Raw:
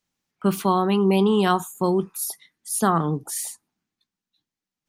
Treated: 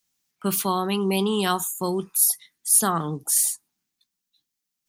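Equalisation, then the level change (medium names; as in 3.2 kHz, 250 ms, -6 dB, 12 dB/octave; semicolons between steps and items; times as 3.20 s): treble shelf 2.6 kHz +11.5 dB; treble shelf 7.8 kHz +5.5 dB; -5.0 dB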